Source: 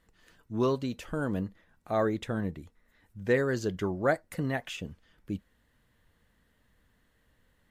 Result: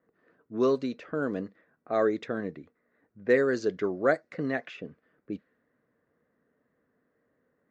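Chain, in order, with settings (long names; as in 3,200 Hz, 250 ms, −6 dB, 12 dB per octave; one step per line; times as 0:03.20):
low-pass that shuts in the quiet parts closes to 1,100 Hz, open at −23.5 dBFS
bass and treble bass −12 dB, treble −2 dB
tape wow and flutter 21 cents
loudspeaker in its box 130–6,900 Hz, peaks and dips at 150 Hz +5 dB, 260 Hz +5 dB, 430 Hz +4 dB, 890 Hz −10 dB, 3,100 Hz −9 dB
level +3 dB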